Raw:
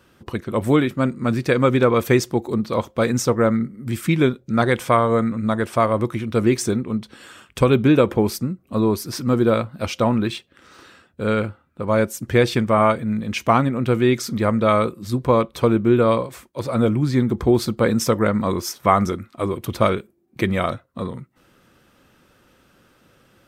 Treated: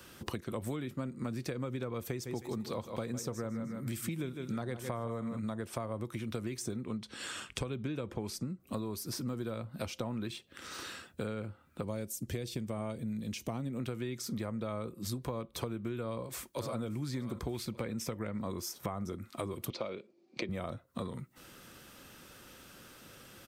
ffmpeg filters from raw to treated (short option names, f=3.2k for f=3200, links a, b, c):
-filter_complex "[0:a]asettb=1/sr,asplit=3[a][b][c];[a]atrim=end=2.074[d];[b]atrim=start=2.07:end=5.39,asetpts=PTS-STARTPTS,afade=t=in:d=0.004:c=qsin,afade=t=out:st=3.316:d=0.004:c=qsin,aecho=1:1:155|310|465:0.237|0.0688|0.0199,atrim=end_sample=146412[e];[c]atrim=start=5.386[f];[d][e]acrossfade=d=0.004:c1=hsin:c2=qsin[g];[g][f]acrossfade=d=0.004:c1=qsin:c2=hsin,asettb=1/sr,asplit=3[h][i][j];[h]atrim=end=6.864[k];[i]atrim=start=6.86:end=8.6,asetpts=PTS-STARTPTS,afade=t=in:d=0.004:c=qsin,afade=t=out:st=1.736:d=0.004:c=qsin,lowpass=8.7k[l];[j]atrim=start=8.596[m];[k][l]acrossfade=d=0.004:c1=hsin:c2=qsin[n];[n][m]acrossfade=d=0.004:c1=qsin:c2=hsin,asettb=1/sr,asplit=3[o][p][q];[o]atrim=end=11.834[r];[p]atrim=start=11.83:end=13.8,asetpts=PTS-STARTPTS,afade=t=in:d=0.004:c=qsin,afade=t=out:st=1.966:d=0.004:c=qsin,equalizer=f=1.3k:t=o:w=1.9:g=-11[s];[q]atrim=start=13.796[t];[r][s]acrossfade=d=0.004:c1=hsin:c2=qsin[u];[u][t]acrossfade=d=0.004:c1=qsin:c2=hsin,asplit=2[v][w];[w]afade=t=in:st=16.03:d=0.01,afade=t=out:st=16.8:d=0.01,aecho=0:1:580|1160|1740|2320|2900:0.188365|0.103601|0.0569804|0.0313392|0.0172366[x];[v][x]amix=inputs=2:normalize=0,asettb=1/sr,asplit=3[y][z][aa];[y]atrim=end=17.544[ab];[z]atrim=start=17.54:end=18.39,asetpts=PTS-STARTPTS,afade=t=in:d=0.004:c=qsin,afade=t=out:st=0.846:d=0.004:c=qsin,equalizer=f=2.3k:t=o:w=0.83:g=9.5[ac];[aa]atrim=start=18.386[ad];[ab][ac]acrossfade=d=0.004:c1=hsin:c2=qsin[ae];[ae][ad]acrossfade=d=0.004:c1=qsin:c2=hsin,asettb=1/sr,asplit=3[af][ag][ah];[af]atrim=end=19.704[ai];[ag]atrim=start=19.7:end=20.49,asetpts=PTS-STARTPTS,afade=t=in:d=0.004:c=qsin,afade=t=out:st=0.786:d=0.004:c=qsin,highpass=270,equalizer=f=550:t=q:w=4:g=6,equalizer=f=1.6k:t=q:w=4:g=-5,equalizer=f=2.4k:t=q:w=4:g=6,equalizer=f=4.5k:t=q:w=4:g=7,lowpass=f=5.7k:w=0.5412,lowpass=f=5.7k:w=1.3066[aj];[ah]atrim=start=20.486[ak];[ai][aj]acrossfade=d=0.004:c1=hsin:c2=qsin[al];[al][ak]acrossfade=d=0.004:c1=qsin:c2=hsin,acrossover=split=180|930[am][an][ao];[am]acompressor=threshold=-26dB:ratio=4[ap];[an]acompressor=threshold=-24dB:ratio=4[aq];[ao]acompressor=threshold=-38dB:ratio=4[ar];[ap][aq][ar]amix=inputs=3:normalize=0,highshelf=f=3.3k:g=10.5,acompressor=threshold=-37dB:ratio=4"